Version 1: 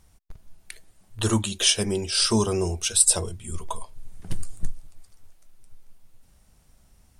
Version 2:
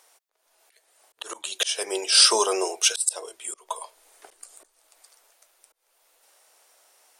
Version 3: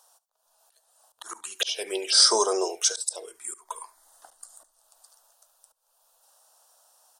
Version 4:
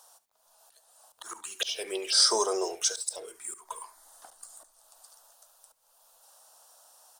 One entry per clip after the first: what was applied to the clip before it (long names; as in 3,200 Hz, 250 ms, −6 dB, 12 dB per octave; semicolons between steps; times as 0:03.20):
volume swells 338 ms; inverse Chebyshev high-pass filter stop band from 180 Hz, stop band 50 dB; level +7 dB
phaser swept by the level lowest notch 360 Hz, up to 2,700 Hz, full sweep at −19.5 dBFS; single-tap delay 71 ms −19.5 dB
mu-law and A-law mismatch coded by mu; level −4.5 dB